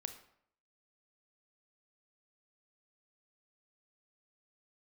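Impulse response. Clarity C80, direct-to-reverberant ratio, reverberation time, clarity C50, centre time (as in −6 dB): 13.5 dB, 8.0 dB, 0.65 s, 10.5 dB, 11 ms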